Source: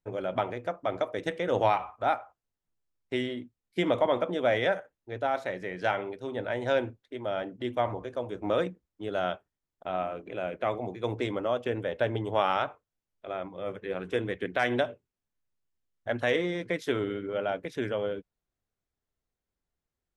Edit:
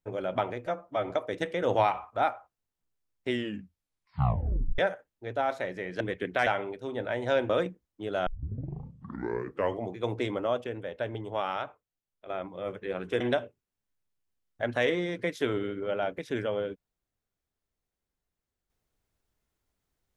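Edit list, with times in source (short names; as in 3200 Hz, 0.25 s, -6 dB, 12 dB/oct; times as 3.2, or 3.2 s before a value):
0.66–0.95 stretch 1.5×
3.16 tape stop 1.48 s
6.89–8.5 cut
9.27 tape start 1.64 s
11.65–13.3 gain -5.5 dB
14.21–14.67 move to 5.86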